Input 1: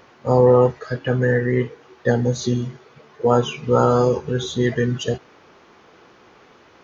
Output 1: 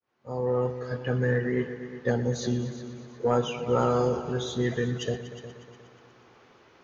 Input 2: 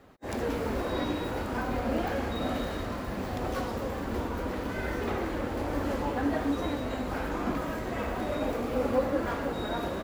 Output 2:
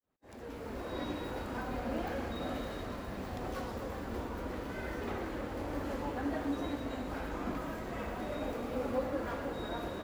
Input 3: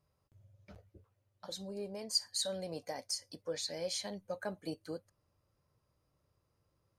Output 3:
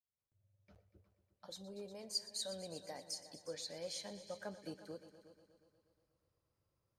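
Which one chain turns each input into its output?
fade-in on the opening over 1.10 s; multi-head delay 120 ms, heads all three, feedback 47%, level -17 dB; saturation -4.5 dBFS; trim -7 dB

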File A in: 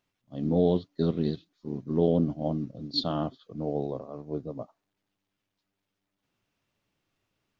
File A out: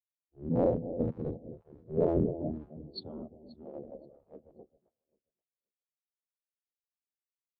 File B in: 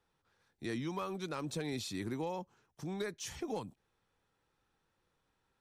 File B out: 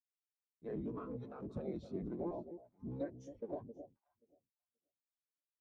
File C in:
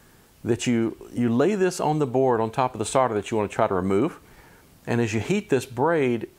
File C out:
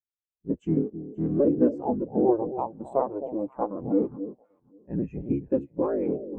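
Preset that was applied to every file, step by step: cycle switcher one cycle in 3, inverted; echo whose repeats swap between lows and highs 265 ms, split 830 Hz, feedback 62%, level -4.5 dB; spectral contrast expander 2.5:1; trim -4 dB

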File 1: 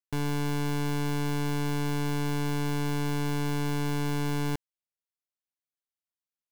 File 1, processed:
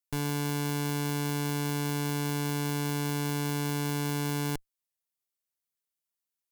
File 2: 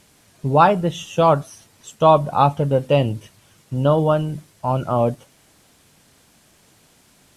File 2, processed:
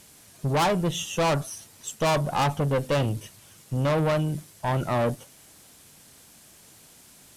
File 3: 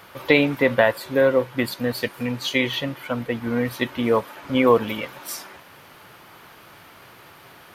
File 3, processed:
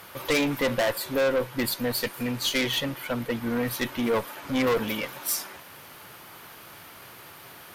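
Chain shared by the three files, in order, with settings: valve stage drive 20 dB, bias 0.35; treble shelf 5.9 kHz +9.5 dB

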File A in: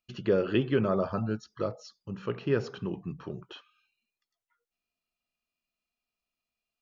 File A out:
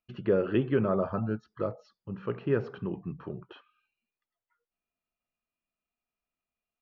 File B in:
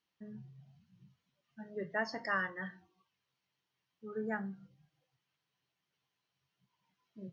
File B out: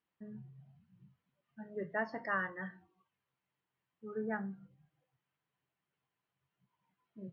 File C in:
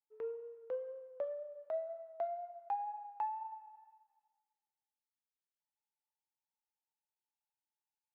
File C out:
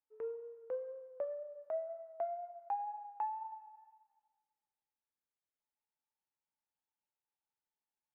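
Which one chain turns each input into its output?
low-pass 2.1 kHz 12 dB/octave

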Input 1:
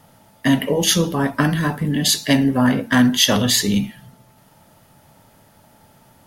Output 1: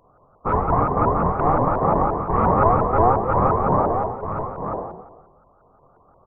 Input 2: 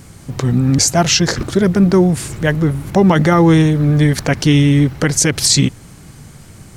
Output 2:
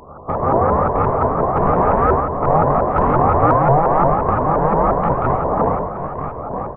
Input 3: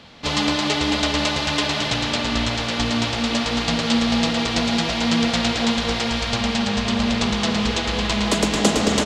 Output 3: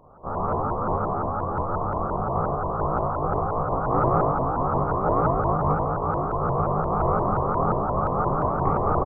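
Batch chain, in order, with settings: spectral peaks clipped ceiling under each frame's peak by 24 dB; Chebyshev low-pass 570 Hz, order 4; spectral gate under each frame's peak -30 dB strong; comb 1.8 ms, depth 37%; in parallel at +1 dB: compressor with a negative ratio -22 dBFS, ratio -1; on the sum: saturation -8 dBFS; ring modulator 610 Hz; on a send: delay 937 ms -8 dB; on the sum: plate-style reverb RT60 0.99 s, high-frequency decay 0.8×, DRR -2.5 dB; vibrato with a chosen wave saw up 5.7 Hz, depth 250 cents; trim -2 dB

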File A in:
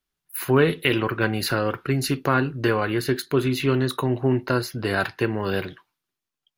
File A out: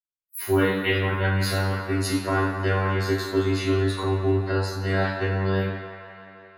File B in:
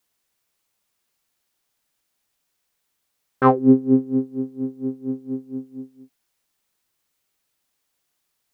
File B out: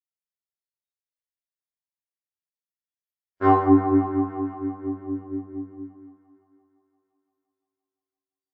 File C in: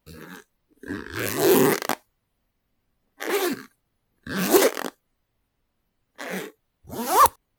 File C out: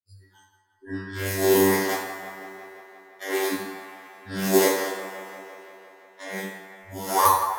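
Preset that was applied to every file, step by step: spectral noise reduction 29 dB; robot voice 96.1 Hz; on a send: feedback echo behind a band-pass 172 ms, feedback 73%, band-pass 1.2 kHz, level -8 dB; on the sum: two-slope reverb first 0.62 s, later 2.5 s, from -18 dB, DRR -7 dB; trim -7 dB

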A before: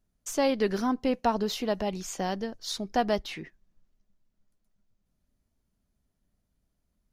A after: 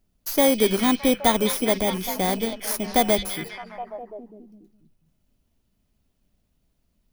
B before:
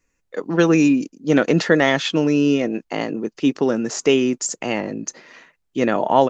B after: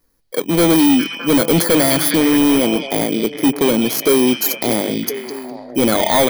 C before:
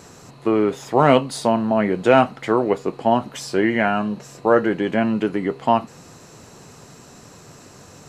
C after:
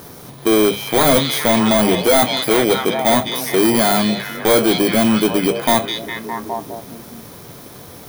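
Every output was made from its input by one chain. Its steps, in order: bit-reversed sample order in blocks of 16 samples; hum notches 50/100/150/200 Hz; on a send: repeats whose band climbs or falls 205 ms, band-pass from 3.4 kHz, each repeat -0.7 oct, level -3.5 dB; on the sum: hard clipper -16.5 dBFS; trim +7 dB

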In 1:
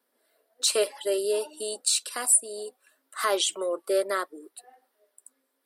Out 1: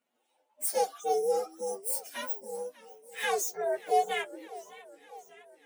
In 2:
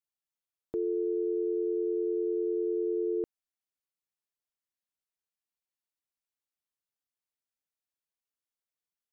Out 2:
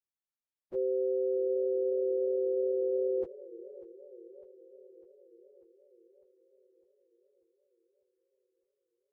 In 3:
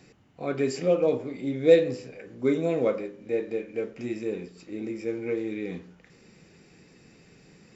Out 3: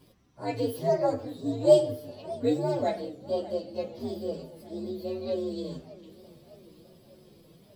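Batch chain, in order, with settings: frequency axis rescaled in octaves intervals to 128%; modulated delay 599 ms, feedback 63%, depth 187 cents, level -19 dB

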